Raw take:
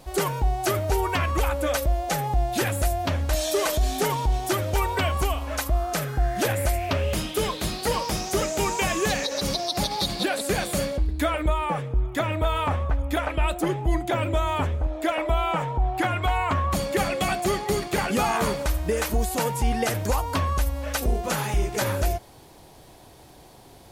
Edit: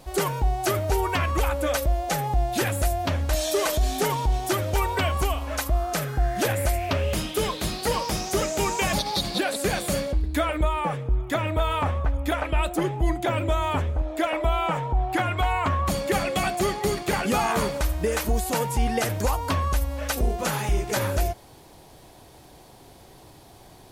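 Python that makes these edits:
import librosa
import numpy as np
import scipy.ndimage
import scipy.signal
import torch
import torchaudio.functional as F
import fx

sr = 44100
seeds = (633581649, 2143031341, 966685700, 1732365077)

y = fx.edit(x, sr, fx.cut(start_s=8.93, length_s=0.85), tone=tone)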